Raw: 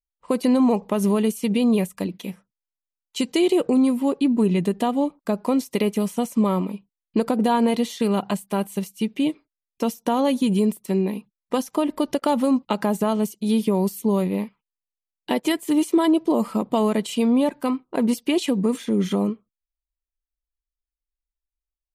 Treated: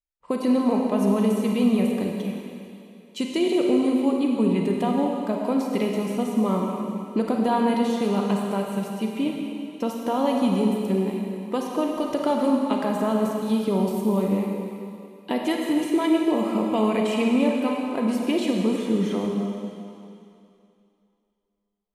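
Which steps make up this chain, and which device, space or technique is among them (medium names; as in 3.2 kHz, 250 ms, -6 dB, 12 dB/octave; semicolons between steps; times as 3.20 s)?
15.84–17.84 s: peaking EQ 2.4 kHz +11.5 dB 0.32 oct; swimming-pool hall (reverberation RT60 2.7 s, pre-delay 32 ms, DRR 0 dB; treble shelf 4.8 kHz -7 dB); trim -3.5 dB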